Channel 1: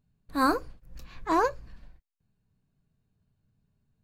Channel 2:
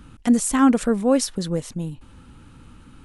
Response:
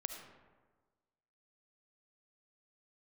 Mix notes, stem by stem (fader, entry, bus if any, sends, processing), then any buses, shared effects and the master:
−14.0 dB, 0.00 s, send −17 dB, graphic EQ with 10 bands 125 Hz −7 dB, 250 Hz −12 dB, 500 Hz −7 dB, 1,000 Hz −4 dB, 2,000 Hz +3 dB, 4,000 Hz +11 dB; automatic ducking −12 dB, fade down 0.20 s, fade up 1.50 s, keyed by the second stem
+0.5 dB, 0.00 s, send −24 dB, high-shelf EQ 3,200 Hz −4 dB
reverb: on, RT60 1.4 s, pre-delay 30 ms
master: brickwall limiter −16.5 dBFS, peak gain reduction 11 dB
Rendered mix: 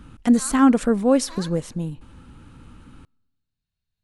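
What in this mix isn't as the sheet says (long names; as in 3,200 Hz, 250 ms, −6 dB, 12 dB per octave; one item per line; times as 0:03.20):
stem 1 −14.0 dB → −3.0 dB
master: missing brickwall limiter −16.5 dBFS, peak gain reduction 11 dB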